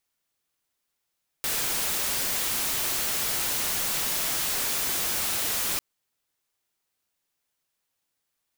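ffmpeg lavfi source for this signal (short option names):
-f lavfi -i "anoisesrc=c=white:a=0.073:d=4.35:r=44100:seed=1"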